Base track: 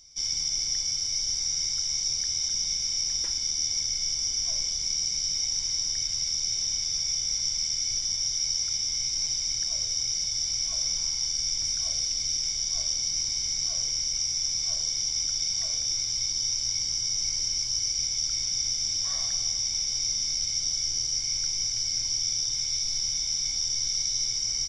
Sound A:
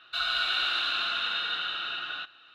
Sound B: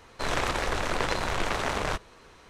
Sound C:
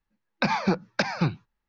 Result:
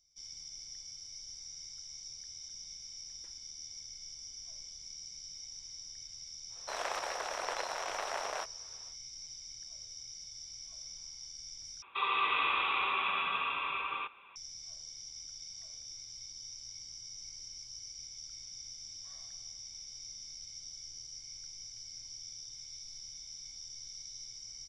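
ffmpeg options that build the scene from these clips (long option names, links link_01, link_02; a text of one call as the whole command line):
ffmpeg -i bed.wav -i cue0.wav -i cue1.wav -filter_complex "[0:a]volume=-19dB[link_01];[2:a]highpass=frequency=650:width_type=q:width=1.8[link_02];[1:a]highpass=frequency=420:width_type=q:width=0.5412,highpass=frequency=420:width_type=q:width=1.307,lowpass=frequency=3200:width_type=q:width=0.5176,lowpass=frequency=3200:width_type=q:width=0.7071,lowpass=frequency=3200:width_type=q:width=1.932,afreqshift=-290[link_03];[link_01]asplit=2[link_04][link_05];[link_04]atrim=end=11.824[link_06];[link_03]atrim=end=2.54,asetpts=PTS-STARTPTS,volume=-0.5dB[link_07];[link_05]atrim=start=14.356[link_08];[link_02]atrim=end=2.49,asetpts=PTS-STARTPTS,volume=-10.5dB,afade=type=in:duration=0.1,afade=type=out:start_time=2.39:duration=0.1,adelay=6480[link_09];[link_06][link_07]acrossfade=duration=0.004:curve1=hsin:curve2=hsin[link_10];[link_10][link_08]acrossfade=duration=0.004:curve1=hsin:curve2=hsin[link_11];[link_11][link_09]amix=inputs=2:normalize=0" out.wav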